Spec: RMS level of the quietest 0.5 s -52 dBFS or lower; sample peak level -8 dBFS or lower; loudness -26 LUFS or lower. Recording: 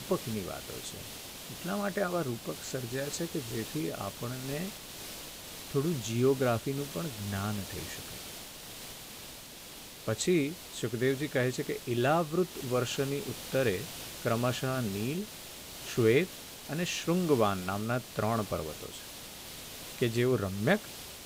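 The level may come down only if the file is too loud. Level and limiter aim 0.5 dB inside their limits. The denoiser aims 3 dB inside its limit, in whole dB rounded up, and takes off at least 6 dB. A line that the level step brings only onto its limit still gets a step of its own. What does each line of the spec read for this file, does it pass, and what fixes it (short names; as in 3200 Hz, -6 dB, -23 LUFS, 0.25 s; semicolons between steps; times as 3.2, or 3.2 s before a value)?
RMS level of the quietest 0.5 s -47 dBFS: fail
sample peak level -13.5 dBFS: OK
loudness -33.0 LUFS: OK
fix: denoiser 8 dB, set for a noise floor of -47 dBFS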